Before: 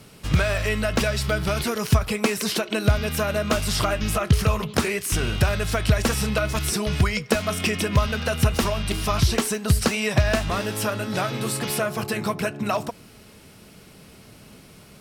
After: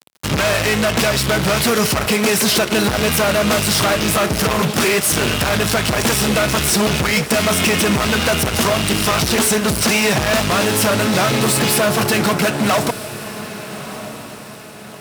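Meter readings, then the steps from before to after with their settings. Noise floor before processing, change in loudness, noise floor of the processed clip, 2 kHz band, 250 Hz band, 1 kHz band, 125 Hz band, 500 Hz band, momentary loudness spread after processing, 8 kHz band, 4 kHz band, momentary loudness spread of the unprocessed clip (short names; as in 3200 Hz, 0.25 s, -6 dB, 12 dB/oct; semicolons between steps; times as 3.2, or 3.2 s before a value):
-48 dBFS, +8.0 dB, -35 dBFS, +9.0 dB, +8.0 dB, +8.5 dB, +1.5 dB, +8.0 dB, 13 LU, +11.0 dB, +10.5 dB, 5 LU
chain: fuzz box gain 34 dB, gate -39 dBFS; HPF 120 Hz 12 dB/oct; diffused feedback echo 1.271 s, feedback 43%, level -13 dB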